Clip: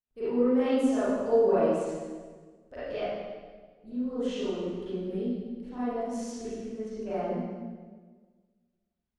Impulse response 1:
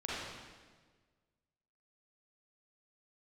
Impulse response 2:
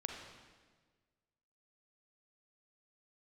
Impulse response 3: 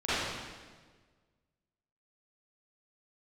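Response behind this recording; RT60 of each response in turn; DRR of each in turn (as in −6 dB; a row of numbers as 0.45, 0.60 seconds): 3; 1.5, 1.5, 1.5 seconds; −7.5, 2.0, −15.0 decibels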